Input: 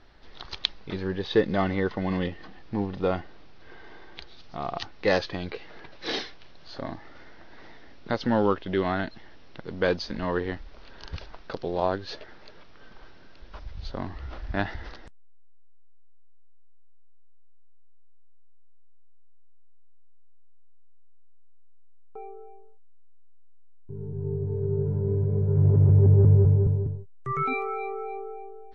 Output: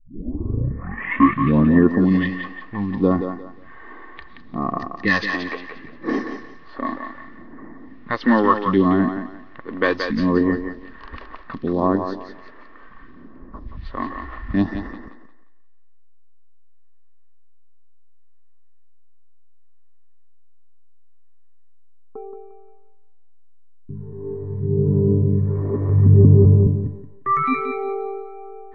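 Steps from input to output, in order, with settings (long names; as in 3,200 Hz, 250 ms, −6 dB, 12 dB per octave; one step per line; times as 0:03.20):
turntable start at the beginning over 1.99 s
all-pass phaser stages 2, 0.69 Hz, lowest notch 130–3,500 Hz
hollow resonant body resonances 250/1,100/1,800 Hz, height 17 dB, ringing for 30 ms
low-pass that shuts in the quiet parts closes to 1,600 Hz, open at −15 dBFS
feedback echo with a high-pass in the loop 176 ms, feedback 32%, high-pass 360 Hz, level −6 dB
level +1.5 dB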